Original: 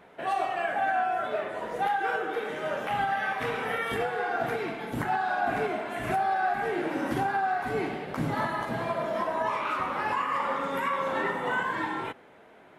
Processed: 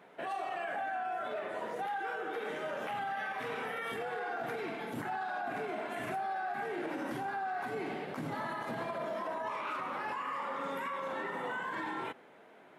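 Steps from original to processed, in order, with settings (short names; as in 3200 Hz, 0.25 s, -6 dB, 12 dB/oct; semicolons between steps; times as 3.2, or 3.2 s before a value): HPF 150 Hz 12 dB/oct; limiter -26 dBFS, peak gain reduction 9 dB; gain -3.5 dB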